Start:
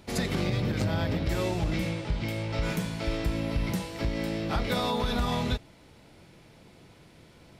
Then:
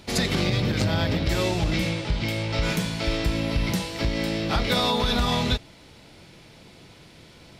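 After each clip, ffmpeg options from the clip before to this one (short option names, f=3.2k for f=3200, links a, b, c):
-af "equalizer=f=4.2k:w=0.7:g=6,volume=4dB"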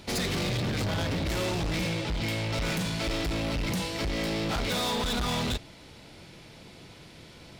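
-af "volume=27dB,asoftclip=hard,volume=-27dB"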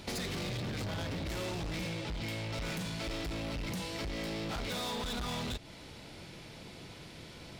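-af "acompressor=threshold=-36dB:ratio=10"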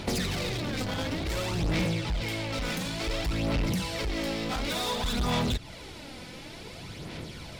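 -af "aphaser=in_gain=1:out_gain=1:delay=4:decay=0.47:speed=0.56:type=sinusoidal,volume=5.5dB"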